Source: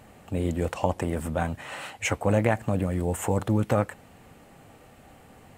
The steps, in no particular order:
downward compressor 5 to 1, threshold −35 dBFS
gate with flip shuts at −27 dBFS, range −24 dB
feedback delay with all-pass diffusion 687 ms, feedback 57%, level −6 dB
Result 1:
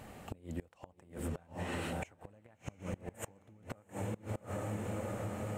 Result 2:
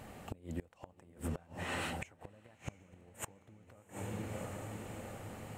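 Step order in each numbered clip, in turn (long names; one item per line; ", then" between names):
feedback delay with all-pass diffusion, then downward compressor, then gate with flip
downward compressor, then feedback delay with all-pass diffusion, then gate with flip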